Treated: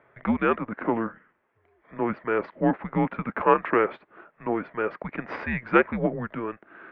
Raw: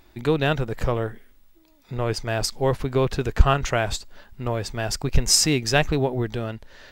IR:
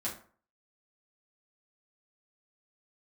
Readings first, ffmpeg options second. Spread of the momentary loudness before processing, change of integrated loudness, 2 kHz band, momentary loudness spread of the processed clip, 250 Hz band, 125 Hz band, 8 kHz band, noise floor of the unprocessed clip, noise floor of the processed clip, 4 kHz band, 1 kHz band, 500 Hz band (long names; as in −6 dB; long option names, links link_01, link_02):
13 LU, −3.0 dB, −1.0 dB, 12 LU, +1.0 dB, −11.0 dB, below −40 dB, −56 dBFS, −69 dBFS, below −20 dB, +1.5 dB, −1.5 dB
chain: -af "bandreject=frequency=980:width=16,aeval=exprs='0.891*(cos(1*acos(clip(val(0)/0.891,-1,1)))-cos(1*PI/2))+0.112*(cos(4*acos(clip(val(0)/0.891,-1,1)))-cos(4*PI/2))':channel_layout=same,highpass=frequency=500:width_type=q:width=0.5412,highpass=frequency=500:width_type=q:width=1.307,lowpass=frequency=2300:width_type=q:width=0.5176,lowpass=frequency=2300:width_type=q:width=0.7071,lowpass=frequency=2300:width_type=q:width=1.932,afreqshift=-230,volume=3.5dB"